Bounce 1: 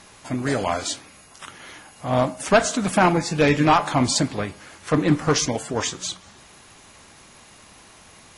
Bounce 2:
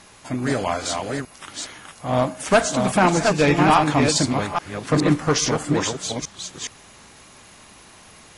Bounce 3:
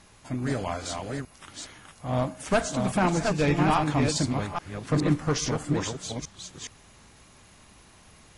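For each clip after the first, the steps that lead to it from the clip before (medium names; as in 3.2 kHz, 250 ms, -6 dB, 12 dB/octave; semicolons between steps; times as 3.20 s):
chunks repeated in reverse 417 ms, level -4 dB
bass shelf 150 Hz +10.5 dB; trim -8.5 dB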